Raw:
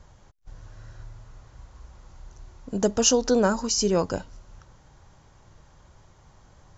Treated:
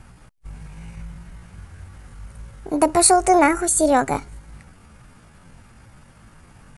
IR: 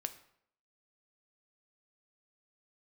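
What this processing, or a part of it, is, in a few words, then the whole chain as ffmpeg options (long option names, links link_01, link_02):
chipmunk voice: -af "asetrate=66075,aresample=44100,atempo=0.66742,volume=6dB"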